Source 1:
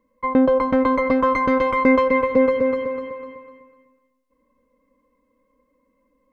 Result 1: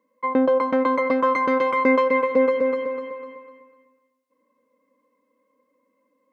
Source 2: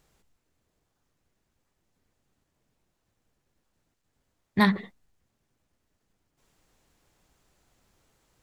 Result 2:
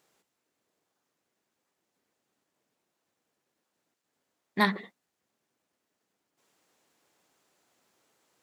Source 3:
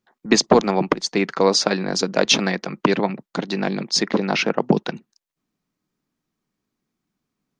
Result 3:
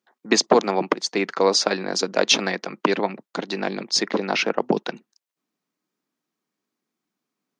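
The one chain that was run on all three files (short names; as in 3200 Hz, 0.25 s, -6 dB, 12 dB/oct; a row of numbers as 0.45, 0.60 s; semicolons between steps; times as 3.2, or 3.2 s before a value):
HPF 270 Hz 12 dB/oct; gain -1 dB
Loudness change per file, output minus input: -2.0, -3.0, -2.0 LU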